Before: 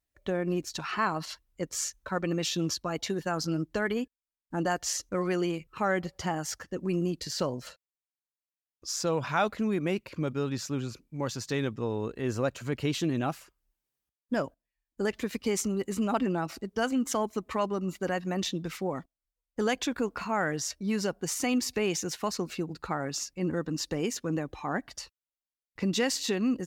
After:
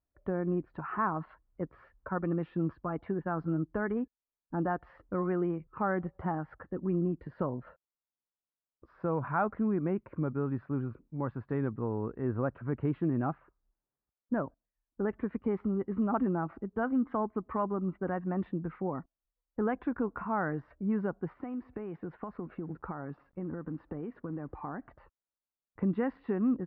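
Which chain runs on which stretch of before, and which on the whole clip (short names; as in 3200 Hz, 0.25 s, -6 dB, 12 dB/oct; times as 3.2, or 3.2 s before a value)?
21.33–24.91 compressor 12:1, threshold -32 dBFS + companded quantiser 6-bit
whole clip: inverse Chebyshev low-pass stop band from 6000 Hz, stop band 70 dB; dynamic EQ 550 Hz, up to -5 dB, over -44 dBFS, Q 1.5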